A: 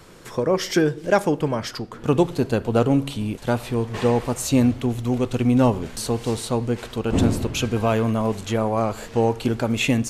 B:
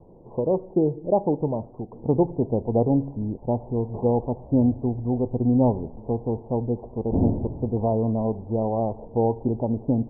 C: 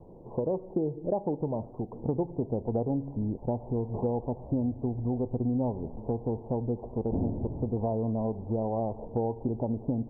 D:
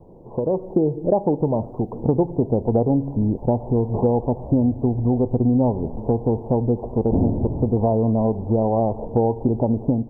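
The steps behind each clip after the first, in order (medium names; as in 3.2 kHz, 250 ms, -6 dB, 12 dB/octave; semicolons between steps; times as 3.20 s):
steep low-pass 920 Hz 72 dB/octave; trim -2 dB
compression 4:1, threshold -27 dBFS, peak gain reduction 11 dB
level rider gain up to 7 dB; trim +3.5 dB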